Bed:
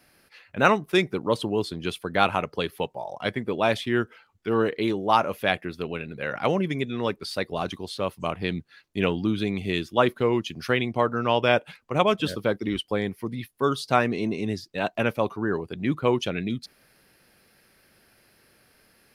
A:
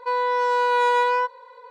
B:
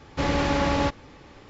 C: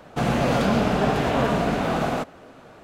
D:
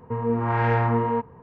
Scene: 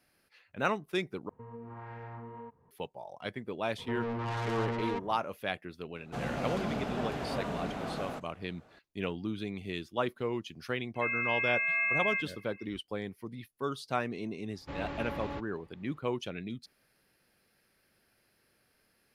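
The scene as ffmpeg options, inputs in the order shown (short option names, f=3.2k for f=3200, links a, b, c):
-filter_complex "[4:a]asplit=2[a][b];[0:a]volume=-11dB[c];[a]alimiter=limit=-20.5dB:level=0:latency=1:release=192[d];[b]asoftclip=type=tanh:threshold=-29dB[e];[3:a]aresample=32000,aresample=44100[f];[1:a]lowpass=f=2.6k:t=q:w=0.5098,lowpass=f=2.6k:t=q:w=0.6013,lowpass=f=2.6k:t=q:w=0.9,lowpass=f=2.6k:t=q:w=2.563,afreqshift=-3100[g];[2:a]equalizer=f=6.1k:t=o:w=0.96:g=-11.5[h];[c]asplit=2[i][j];[i]atrim=end=1.294[k];[d]atrim=end=1.42,asetpts=PTS-STARTPTS,volume=-17.5dB[l];[j]atrim=start=2.706[m];[e]atrim=end=1.42,asetpts=PTS-STARTPTS,volume=-3.5dB,afade=t=in:d=0.004:c=hsin,afade=t=out:st=1.416:d=0.004:c=hsin,adelay=3780[n];[f]atrim=end=2.83,asetpts=PTS-STARTPTS,volume=-14dB,afade=t=in:d=0.004:c=hsin,afade=t=out:st=2.826:d=0.004:c=hsin,adelay=5960[o];[g]atrim=end=1.7,asetpts=PTS-STARTPTS,volume=-10.5dB,afade=t=in:d=0.004:c=hsin,afade=t=out:st=1.696:d=0.004:c=hsin,adelay=10950[p];[h]atrim=end=1.49,asetpts=PTS-STARTPTS,volume=-15.5dB,afade=t=in:d=0.004:c=hsin,afade=t=out:st=1.486:d=0.004:c=hsin,adelay=14500[q];[k][l]acrossfade=d=0.004:c1=hsin:c2=hsin[r];[r][m]acrossfade=d=0.004:c1=hsin:c2=hsin[s];[s][n][o][p][q]amix=inputs=5:normalize=0"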